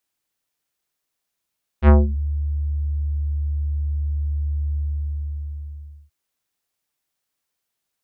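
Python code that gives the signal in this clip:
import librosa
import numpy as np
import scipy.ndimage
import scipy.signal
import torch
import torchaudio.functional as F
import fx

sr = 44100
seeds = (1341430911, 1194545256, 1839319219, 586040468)

y = fx.sub_voice(sr, note=38, wave='square', cutoff_hz=110.0, q=0.77, env_oct=5.0, env_s=0.35, attack_ms=64.0, decay_s=0.19, sustain_db=-14.5, release_s=1.34, note_s=2.94, slope=24)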